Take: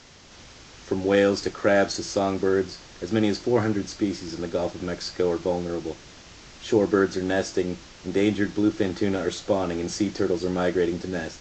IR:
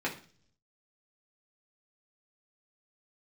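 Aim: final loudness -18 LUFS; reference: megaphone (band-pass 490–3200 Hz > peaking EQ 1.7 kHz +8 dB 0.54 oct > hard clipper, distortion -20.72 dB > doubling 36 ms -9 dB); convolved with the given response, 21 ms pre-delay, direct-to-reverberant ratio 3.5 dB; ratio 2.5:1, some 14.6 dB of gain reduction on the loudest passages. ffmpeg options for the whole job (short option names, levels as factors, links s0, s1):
-filter_complex "[0:a]acompressor=threshold=0.0126:ratio=2.5,asplit=2[s0][s1];[1:a]atrim=start_sample=2205,adelay=21[s2];[s1][s2]afir=irnorm=-1:irlink=0,volume=0.299[s3];[s0][s3]amix=inputs=2:normalize=0,highpass=490,lowpass=3200,equalizer=f=1700:t=o:w=0.54:g=8,asoftclip=type=hard:threshold=0.0422,asplit=2[s4][s5];[s5]adelay=36,volume=0.355[s6];[s4][s6]amix=inputs=2:normalize=0,volume=11.2"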